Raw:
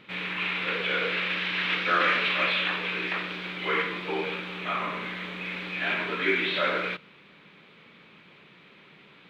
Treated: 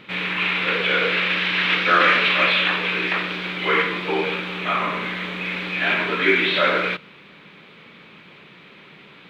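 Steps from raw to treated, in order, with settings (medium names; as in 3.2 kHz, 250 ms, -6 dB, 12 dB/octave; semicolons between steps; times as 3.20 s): trim +7.5 dB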